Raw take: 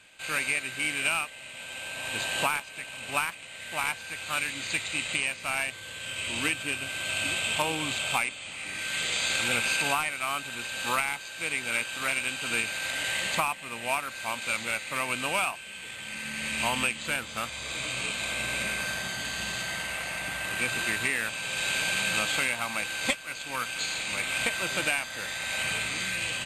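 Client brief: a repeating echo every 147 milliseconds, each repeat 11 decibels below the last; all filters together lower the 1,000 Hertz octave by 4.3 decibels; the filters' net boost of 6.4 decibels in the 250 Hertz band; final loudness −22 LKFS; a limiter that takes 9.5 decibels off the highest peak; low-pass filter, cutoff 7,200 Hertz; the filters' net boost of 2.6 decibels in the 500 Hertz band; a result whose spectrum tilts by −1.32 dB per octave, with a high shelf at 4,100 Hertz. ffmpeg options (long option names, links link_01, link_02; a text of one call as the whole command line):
ffmpeg -i in.wav -af "lowpass=7200,equalizer=frequency=250:width_type=o:gain=7,equalizer=frequency=500:width_type=o:gain=4,equalizer=frequency=1000:width_type=o:gain=-8,highshelf=frequency=4100:gain=8.5,alimiter=limit=-17.5dB:level=0:latency=1,aecho=1:1:147|294|441:0.282|0.0789|0.0221,volume=6.5dB" out.wav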